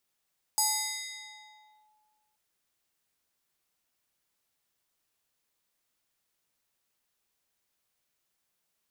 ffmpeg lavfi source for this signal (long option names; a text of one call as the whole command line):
ffmpeg -f lavfi -i "aevalsrc='0.0794*pow(10,-3*t/1.85)*sin(2*PI*853*t+3.8*clip(1-t/1.32,0,1)*sin(2*PI*3.39*853*t))':duration=1.78:sample_rate=44100" out.wav